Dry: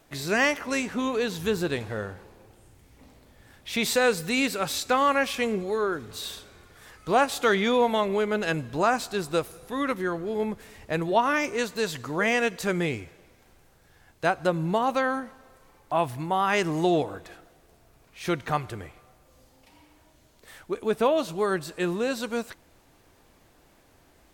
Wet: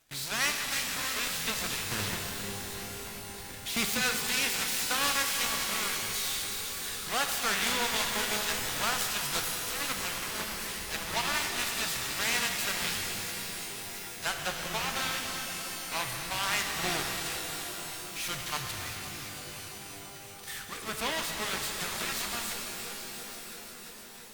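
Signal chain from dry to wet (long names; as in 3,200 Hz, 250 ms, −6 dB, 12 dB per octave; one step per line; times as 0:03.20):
in parallel at −11 dB: fuzz pedal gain 48 dB, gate −51 dBFS
0:01.91–0:03.97: on the sum: low-shelf EQ 460 Hz +6 dB
on a send: delay that swaps between a low-pass and a high-pass 169 ms, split 1,200 Hz, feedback 88%, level −13 dB
on the sum: harmonic generator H 7 −10 dB, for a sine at −7.5 dBFS
guitar amp tone stack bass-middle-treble 5-5-5
reverb with rising layers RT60 3.8 s, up +12 semitones, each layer −2 dB, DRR 4 dB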